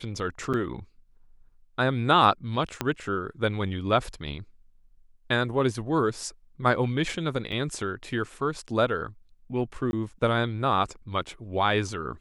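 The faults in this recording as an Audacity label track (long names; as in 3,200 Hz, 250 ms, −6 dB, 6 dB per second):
0.530000	0.540000	drop-out 6.8 ms
2.810000	2.810000	click −11 dBFS
7.520000	7.530000	drop-out 5.5 ms
9.910000	9.930000	drop-out 21 ms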